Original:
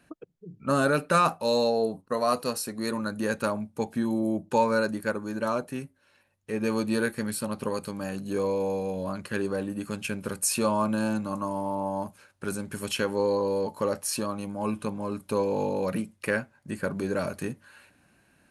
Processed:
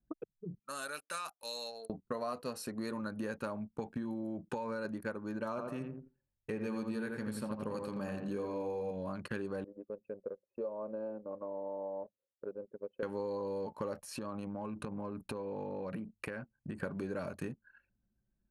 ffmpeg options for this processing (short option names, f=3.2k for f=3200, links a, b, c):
-filter_complex "[0:a]asettb=1/sr,asplit=3[a][b][c];[a]atrim=end=0.594[d];[b]atrim=start=0.59:end=1.9,asetpts=PTS-STARTPTS,afade=t=in:d=0.004:c=qsin,afade=t=out:st=1.306:d=0.004:c=qsin,aderivative[e];[c]atrim=start=1.896[f];[d][e]acrossfade=d=0.004:c1=hsin:c2=qsin[g];[g][f]acrossfade=d=0.004:c1=qsin:c2=hsin,asettb=1/sr,asplit=3[h][i][j];[h]atrim=end=3.614[k];[i]atrim=start=3.61:end=4.85,asetpts=PTS-STARTPTS,afade=t=in:d=0.004:c=qsin,afade=t=out:st=1.236:d=0.004:c=qsin,acompressor=threshold=-25dB:ratio=6:attack=3.2:release=140:knee=1:detection=peak[l];[j]atrim=start=4.846[m];[k][l]acrossfade=d=0.004:c1=hsin:c2=qsin[n];[n][m]acrossfade=d=0.004:c1=qsin:c2=hsin,asettb=1/sr,asplit=3[o][p][q];[o]atrim=end=5.494[r];[p]atrim=start=5.49:end=8.91,asetpts=PTS-STARTPTS,afade=t=in:d=0.004:c=qsin,afade=t=out:st=3.416:d=0.004:c=qsin,asplit=2[s][t];[t]adelay=85,lowpass=f=2.1k:p=1,volume=-4dB,asplit=2[u][v];[v]adelay=85,lowpass=f=2.1k:p=1,volume=0.41,asplit=2[w][x];[x]adelay=85,lowpass=f=2.1k:p=1,volume=0.41,asplit=2[y][z];[z]adelay=85,lowpass=f=2.1k:p=1,volume=0.41,asplit=2[aa][ab];[ab]adelay=85,lowpass=f=2.1k:p=1,volume=0.41[ac];[s][u][w][y][aa][ac]amix=inputs=6:normalize=0,atrim=end_sample=150822[ad];[q]atrim=start=8.906[ae];[r][ad]acrossfade=d=0.004:c1=hsin:c2=qsin[af];[af][ae]acrossfade=d=0.004:c1=qsin:c2=hsin,asettb=1/sr,asplit=3[ag][ah][ai];[ag]atrim=end=9.644[aj];[ah]atrim=start=9.64:end=13.03,asetpts=PTS-STARTPTS,afade=t=in:d=0.004:c=qsin,afade=t=out:st=3.386:d=0.004:c=qsin,bandpass=f=500:t=q:w=4.8[ak];[ai]atrim=start=13.026[al];[aj][ak]acrossfade=d=0.004:c1=hsin:c2=qsin[am];[am][al]acrossfade=d=0.004:c1=qsin:c2=hsin,asettb=1/sr,asplit=3[an][ao][ap];[an]atrim=end=14.004[aq];[ao]atrim=start=14:end=16.79,asetpts=PTS-STARTPTS,afade=t=in:d=0.004:c=qsin,afade=t=out:st=2.786:d=0.004:c=qsin,acompressor=threshold=-34dB:ratio=12:attack=3.2:release=140:knee=1:detection=peak[ar];[ap]atrim=start=16.786[as];[aq][ar]acrossfade=d=0.004:c1=hsin:c2=qsin[at];[at][as]acrossfade=d=0.004:c1=qsin:c2=hsin,anlmdn=0.0398,highshelf=f=4.5k:g=-9.5,acompressor=threshold=-38dB:ratio=5,volume=1.5dB"